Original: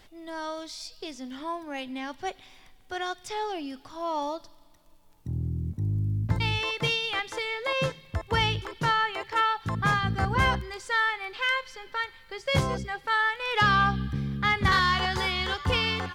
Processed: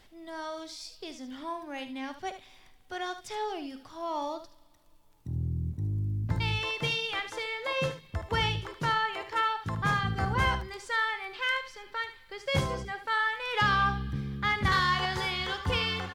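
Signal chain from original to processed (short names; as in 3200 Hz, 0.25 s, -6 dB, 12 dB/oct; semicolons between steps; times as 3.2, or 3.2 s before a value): early reflections 49 ms -17 dB, 75 ms -11 dB; gain -3.5 dB; AAC 96 kbps 44100 Hz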